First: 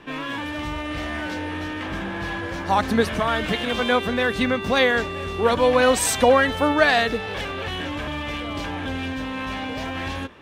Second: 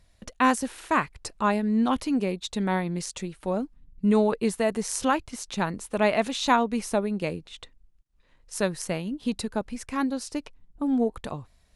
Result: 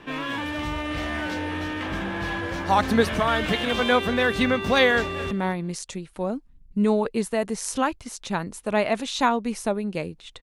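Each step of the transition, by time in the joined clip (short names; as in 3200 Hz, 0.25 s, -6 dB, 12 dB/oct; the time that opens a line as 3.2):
first
4.96–5.31 echo throw 0.22 s, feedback 20%, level -15.5 dB
5.31 switch to second from 2.58 s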